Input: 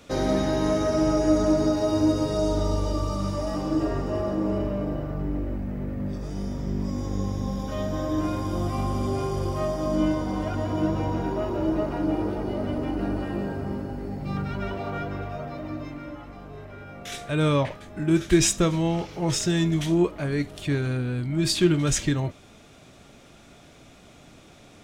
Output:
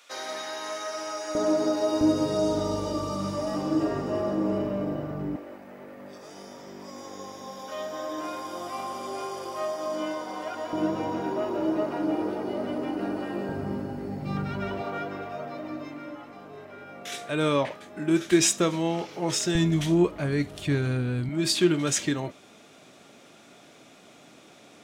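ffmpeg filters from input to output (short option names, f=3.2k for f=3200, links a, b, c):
-af "asetnsamples=n=441:p=0,asendcmd='1.35 highpass f 340;2.01 highpass f 150;5.36 highpass f 560;10.73 highpass f 250;13.49 highpass f 110;14.82 highpass f 240;19.55 highpass f 60;21.29 highpass f 220',highpass=1.1k"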